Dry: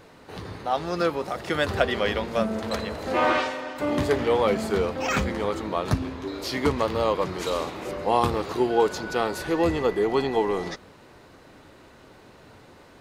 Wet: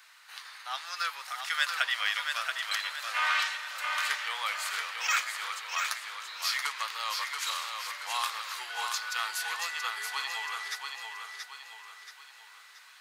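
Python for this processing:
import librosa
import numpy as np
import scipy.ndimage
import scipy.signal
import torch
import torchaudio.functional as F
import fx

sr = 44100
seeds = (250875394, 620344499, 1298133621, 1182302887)

y = scipy.signal.sosfilt(scipy.signal.butter(4, 1300.0, 'highpass', fs=sr, output='sos'), x)
y = fx.high_shelf(y, sr, hz=5500.0, db=5.0)
y = fx.echo_feedback(y, sr, ms=679, feedback_pct=43, wet_db=-5.0)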